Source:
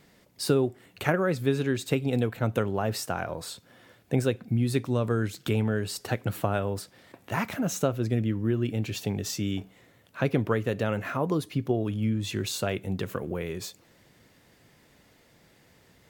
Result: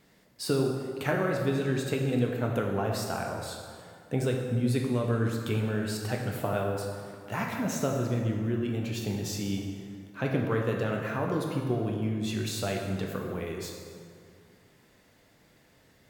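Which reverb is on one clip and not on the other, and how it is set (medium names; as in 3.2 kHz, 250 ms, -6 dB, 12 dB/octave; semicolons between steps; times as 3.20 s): plate-style reverb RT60 2.2 s, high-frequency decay 0.6×, DRR 0 dB; trim -4.5 dB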